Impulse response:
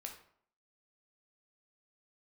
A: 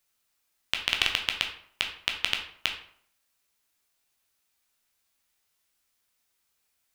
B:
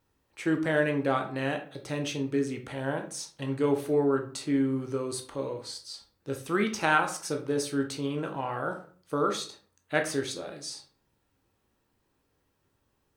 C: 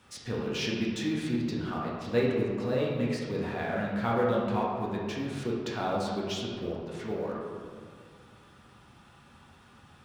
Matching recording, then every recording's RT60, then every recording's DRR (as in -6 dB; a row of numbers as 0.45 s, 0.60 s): A; 0.60 s, 0.45 s, 2.0 s; 2.0 dB, 4.0 dB, -4.5 dB